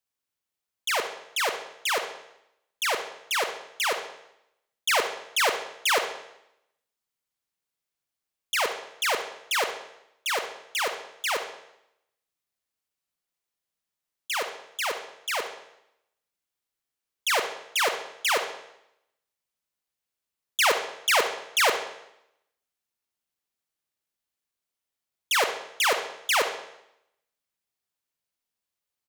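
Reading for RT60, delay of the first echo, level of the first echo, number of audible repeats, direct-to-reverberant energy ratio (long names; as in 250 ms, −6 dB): 0.80 s, 69 ms, −14.0 dB, 1, 6.0 dB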